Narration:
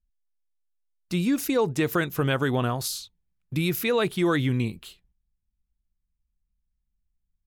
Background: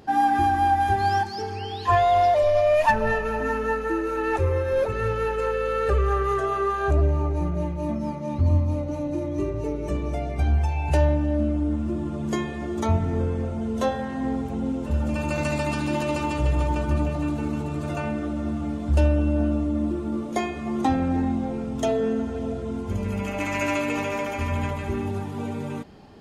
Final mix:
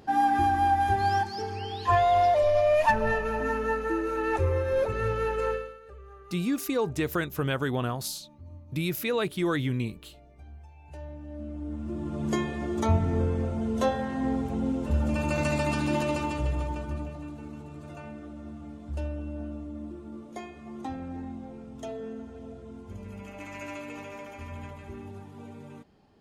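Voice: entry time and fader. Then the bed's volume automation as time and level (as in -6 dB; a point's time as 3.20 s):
5.20 s, -4.0 dB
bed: 5.53 s -3 dB
5.80 s -26 dB
10.78 s -26 dB
12.25 s -1.5 dB
15.99 s -1.5 dB
17.29 s -14 dB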